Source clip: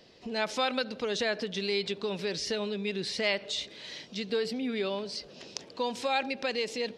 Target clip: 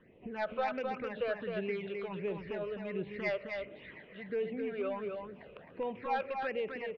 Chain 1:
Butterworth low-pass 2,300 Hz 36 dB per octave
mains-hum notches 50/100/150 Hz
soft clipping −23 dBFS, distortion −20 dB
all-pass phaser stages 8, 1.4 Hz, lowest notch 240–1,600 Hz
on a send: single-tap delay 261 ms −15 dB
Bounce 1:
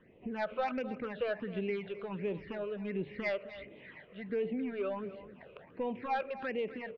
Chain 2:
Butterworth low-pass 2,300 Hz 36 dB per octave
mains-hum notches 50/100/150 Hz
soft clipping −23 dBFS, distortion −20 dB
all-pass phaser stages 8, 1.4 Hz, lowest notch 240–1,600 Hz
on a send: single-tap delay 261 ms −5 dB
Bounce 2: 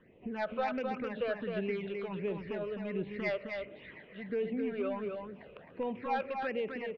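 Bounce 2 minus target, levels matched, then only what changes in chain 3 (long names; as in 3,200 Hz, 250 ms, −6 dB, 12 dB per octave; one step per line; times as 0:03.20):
250 Hz band +3.0 dB
add after Butterworth low-pass: dynamic equaliser 240 Hz, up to −6 dB, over −49 dBFS, Q 2.1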